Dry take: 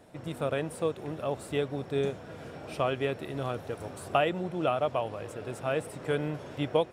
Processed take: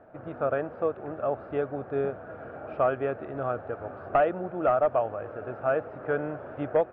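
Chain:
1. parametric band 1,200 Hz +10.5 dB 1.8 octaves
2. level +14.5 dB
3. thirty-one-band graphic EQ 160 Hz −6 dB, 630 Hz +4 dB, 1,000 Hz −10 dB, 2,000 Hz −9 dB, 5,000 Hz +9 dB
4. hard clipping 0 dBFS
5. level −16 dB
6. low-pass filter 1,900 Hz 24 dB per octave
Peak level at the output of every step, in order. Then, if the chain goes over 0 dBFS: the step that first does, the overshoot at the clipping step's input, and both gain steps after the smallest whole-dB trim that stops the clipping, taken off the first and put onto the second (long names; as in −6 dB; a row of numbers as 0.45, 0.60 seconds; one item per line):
−4.0, +10.5, +8.0, 0.0, −16.0, −14.5 dBFS
step 2, 8.0 dB
step 2 +6.5 dB, step 5 −8 dB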